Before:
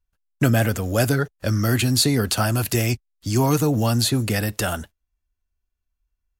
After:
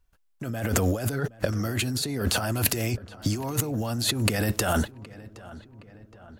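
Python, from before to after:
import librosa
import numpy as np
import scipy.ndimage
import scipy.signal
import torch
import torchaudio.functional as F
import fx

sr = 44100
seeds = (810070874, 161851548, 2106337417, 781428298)

y = fx.peak_eq(x, sr, hz=600.0, db=4.0, octaves=2.7)
y = fx.over_compress(y, sr, threshold_db=-27.0, ratio=-1.0)
y = fx.echo_filtered(y, sr, ms=768, feedback_pct=57, hz=2700.0, wet_db=-18.5)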